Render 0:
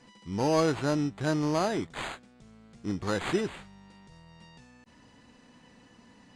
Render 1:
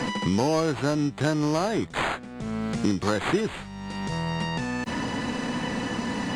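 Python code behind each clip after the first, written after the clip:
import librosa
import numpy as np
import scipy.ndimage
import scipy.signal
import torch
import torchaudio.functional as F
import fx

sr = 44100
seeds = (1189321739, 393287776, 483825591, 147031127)

y = fx.band_squash(x, sr, depth_pct=100)
y = y * 10.0 ** (4.5 / 20.0)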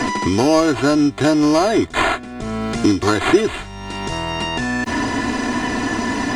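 y = x + 0.75 * np.pad(x, (int(2.9 * sr / 1000.0), 0))[:len(x)]
y = y * 10.0 ** (7.5 / 20.0)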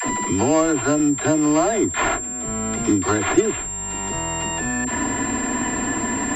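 y = fx.dispersion(x, sr, late='lows', ms=64.0, hz=420.0)
y = fx.pwm(y, sr, carrier_hz=7400.0)
y = y * 10.0 ** (-3.5 / 20.0)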